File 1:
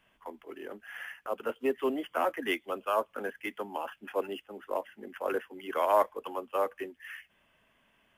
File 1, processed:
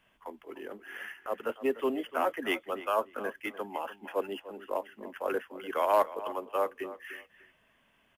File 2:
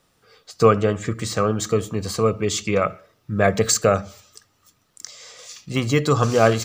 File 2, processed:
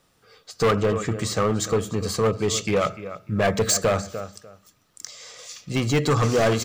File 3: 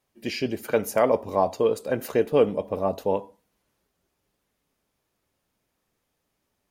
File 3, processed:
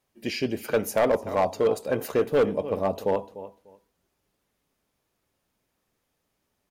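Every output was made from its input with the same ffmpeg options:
ffmpeg -i in.wav -filter_complex "[0:a]asplit=2[link_01][link_02];[link_02]adelay=297,lowpass=frequency=3900:poles=1,volume=-15dB,asplit=2[link_03][link_04];[link_04]adelay=297,lowpass=frequency=3900:poles=1,volume=0.2[link_05];[link_01][link_03][link_05]amix=inputs=3:normalize=0,volume=15.5dB,asoftclip=hard,volume=-15.5dB" out.wav

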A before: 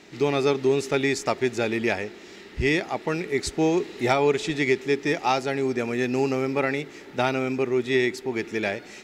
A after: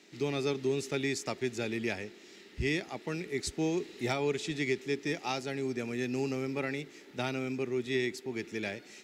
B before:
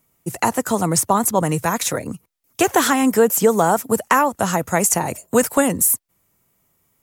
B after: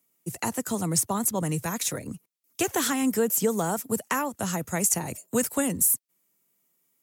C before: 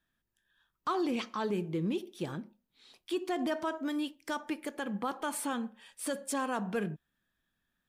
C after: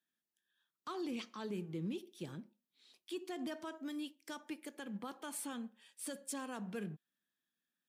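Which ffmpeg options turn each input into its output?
ffmpeg -i in.wav -filter_complex "[0:a]highpass=49,equalizer=frequency=880:width_type=o:width=2.5:gain=-8.5,acrossover=split=190[link_01][link_02];[link_01]aeval=exprs='sgn(val(0))*max(abs(val(0))-0.001,0)':channel_layout=same[link_03];[link_03][link_02]amix=inputs=2:normalize=0,volume=-5dB" out.wav

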